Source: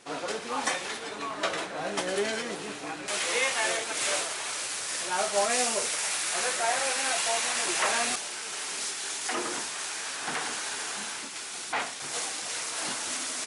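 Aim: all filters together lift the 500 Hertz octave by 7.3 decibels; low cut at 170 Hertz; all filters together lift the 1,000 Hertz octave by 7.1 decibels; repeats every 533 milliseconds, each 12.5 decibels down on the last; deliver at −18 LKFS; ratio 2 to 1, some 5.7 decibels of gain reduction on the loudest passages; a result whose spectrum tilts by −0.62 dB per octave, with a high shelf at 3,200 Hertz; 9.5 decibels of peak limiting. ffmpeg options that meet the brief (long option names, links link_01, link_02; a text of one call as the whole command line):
ffmpeg -i in.wav -af "highpass=170,equalizer=frequency=500:width_type=o:gain=7,equalizer=frequency=1000:width_type=o:gain=7.5,highshelf=frequency=3200:gain=-6,acompressor=threshold=-26dB:ratio=2,alimiter=limit=-23dB:level=0:latency=1,aecho=1:1:533|1066|1599:0.237|0.0569|0.0137,volume=14dB" out.wav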